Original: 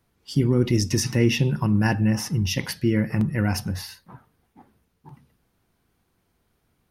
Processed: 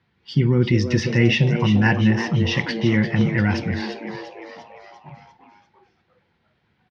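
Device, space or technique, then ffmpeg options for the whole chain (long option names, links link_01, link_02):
frequency-shifting delay pedal into a guitar cabinet: -filter_complex "[0:a]asplit=7[link_01][link_02][link_03][link_04][link_05][link_06][link_07];[link_02]adelay=346,afreqshift=120,volume=-9.5dB[link_08];[link_03]adelay=692,afreqshift=240,volume=-14.7dB[link_09];[link_04]adelay=1038,afreqshift=360,volume=-19.9dB[link_10];[link_05]adelay=1384,afreqshift=480,volume=-25.1dB[link_11];[link_06]adelay=1730,afreqshift=600,volume=-30.3dB[link_12];[link_07]adelay=2076,afreqshift=720,volume=-35.5dB[link_13];[link_01][link_08][link_09][link_10][link_11][link_12][link_13]amix=inputs=7:normalize=0,highpass=100,equalizer=frequency=280:width_type=q:width=4:gain=-8,equalizer=frequency=430:width_type=q:width=4:gain=-5,equalizer=frequency=630:width_type=q:width=4:gain=-9,equalizer=frequency=1200:width_type=q:width=4:gain=-5,equalizer=frequency=1900:width_type=q:width=4:gain=4,lowpass=frequency=4100:width=0.5412,lowpass=frequency=4100:width=1.3066,volume=5.5dB"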